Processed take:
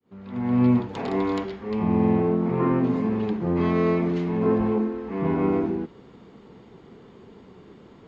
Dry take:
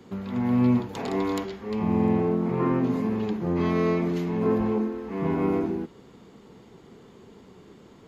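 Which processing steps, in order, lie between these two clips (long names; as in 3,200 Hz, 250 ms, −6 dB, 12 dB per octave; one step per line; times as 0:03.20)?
fade in at the beginning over 0.62 s
Bessel low-pass filter 3,600 Hz, order 2
level +2 dB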